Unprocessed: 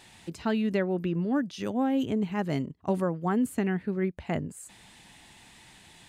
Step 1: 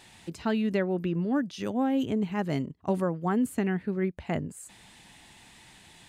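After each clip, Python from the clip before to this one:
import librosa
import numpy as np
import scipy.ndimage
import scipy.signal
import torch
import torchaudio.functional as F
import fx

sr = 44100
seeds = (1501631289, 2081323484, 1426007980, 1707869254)

y = x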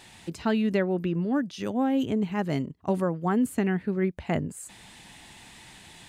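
y = fx.rider(x, sr, range_db=3, speed_s=2.0)
y = y * 10.0 ** (1.5 / 20.0)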